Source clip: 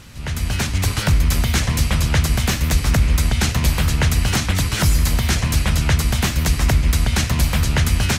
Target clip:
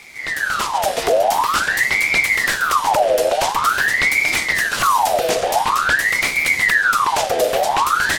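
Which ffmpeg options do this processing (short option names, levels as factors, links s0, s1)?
-af "acontrast=40,aeval=exprs='val(0)*sin(2*PI*1400*n/s+1400*0.6/0.47*sin(2*PI*0.47*n/s))':c=same,volume=0.75"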